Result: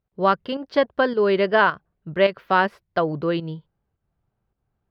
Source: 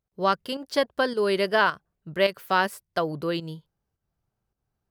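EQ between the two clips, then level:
high-frequency loss of the air 300 metres
+5.5 dB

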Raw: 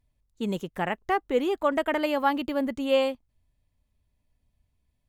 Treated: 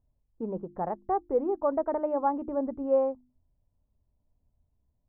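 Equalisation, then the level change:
inverse Chebyshev low-pass filter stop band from 5,500 Hz, stop band 80 dB
mains-hum notches 50/100/150/200/250/300/350 Hz
dynamic equaliser 180 Hz, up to −5 dB, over −42 dBFS, Q 0.74
0.0 dB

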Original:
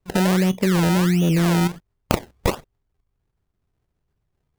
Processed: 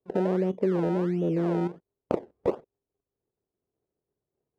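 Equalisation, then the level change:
resonant band-pass 430 Hz, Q 1.8
0.0 dB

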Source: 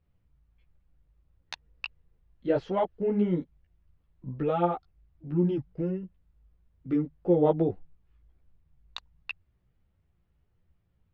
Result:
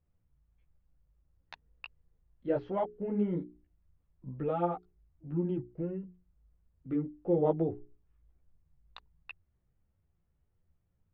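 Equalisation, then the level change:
high-frequency loss of the air 140 metres
high-shelf EQ 3,400 Hz −10 dB
mains-hum notches 60/120/180/240/300/360/420 Hz
−4.0 dB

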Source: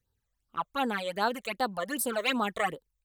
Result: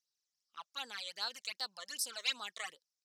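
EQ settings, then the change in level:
resonant band-pass 5,300 Hz, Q 4.5
+10.5 dB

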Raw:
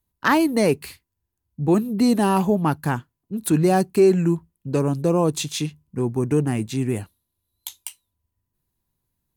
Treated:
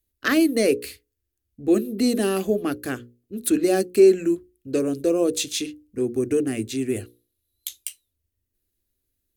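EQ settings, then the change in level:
mains-hum notches 60/120/180/240/300/360/420/480/540 Hz
phaser with its sweep stopped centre 380 Hz, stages 4
+2.0 dB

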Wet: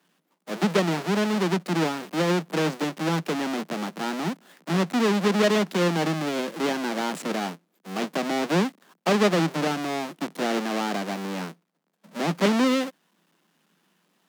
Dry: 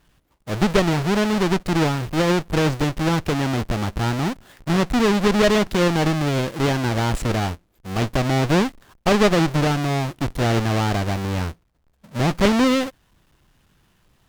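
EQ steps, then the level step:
Butterworth high-pass 160 Hz 96 dB per octave
−4.0 dB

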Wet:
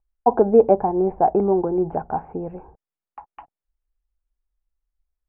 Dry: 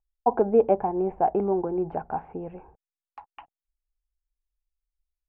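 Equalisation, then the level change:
Bessel low-pass filter 1,500 Hz, order 2
high-frequency loss of the air 210 metres
+6.5 dB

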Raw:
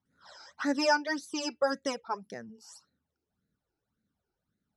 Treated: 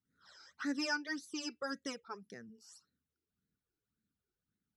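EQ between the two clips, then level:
flat-topped bell 750 Hz −10 dB 1.1 octaves
−6.5 dB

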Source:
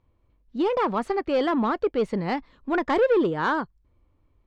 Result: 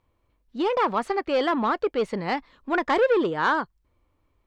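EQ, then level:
low-shelf EQ 410 Hz −9 dB
+3.5 dB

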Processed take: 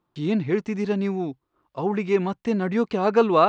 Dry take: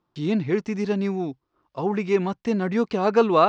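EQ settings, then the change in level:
parametric band 5,300 Hz −5 dB 0.44 octaves
0.0 dB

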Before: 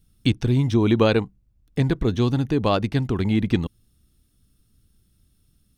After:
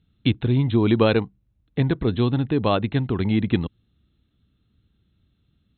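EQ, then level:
high-pass filter 60 Hz
linear-phase brick-wall low-pass 4,200 Hz
0.0 dB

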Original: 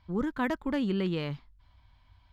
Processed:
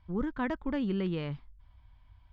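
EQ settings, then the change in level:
high-frequency loss of the air 140 metres
low-shelf EQ 69 Hz +9 dB
notch filter 4,100 Hz, Q 17
−2.5 dB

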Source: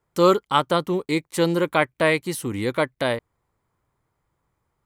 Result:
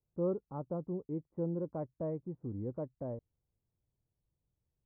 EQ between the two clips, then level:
inverse Chebyshev low-pass filter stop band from 3,200 Hz, stop band 80 dB
low-shelf EQ 210 Hz −7 dB
parametric band 410 Hz −14.5 dB 2.3 octaves
0.0 dB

